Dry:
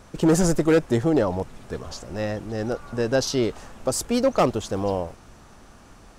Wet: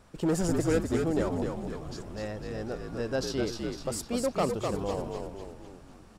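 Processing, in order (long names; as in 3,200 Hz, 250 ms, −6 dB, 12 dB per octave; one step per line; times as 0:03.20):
notch filter 6,200 Hz, Q 12
echo with shifted repeats 252 ms, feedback 52%, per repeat −58 Hz, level −4 dB
level −9 dB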